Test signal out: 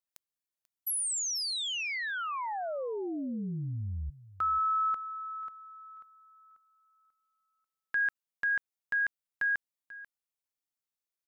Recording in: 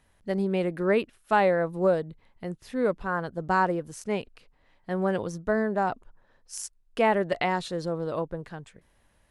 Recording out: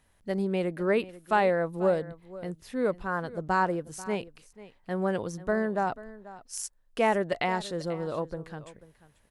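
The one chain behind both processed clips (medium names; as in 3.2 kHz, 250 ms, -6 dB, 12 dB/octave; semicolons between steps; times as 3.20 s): treble shelf 6.7 kHz +4.5 dB; delay 489 ms -17.5 dB; trim -2 dB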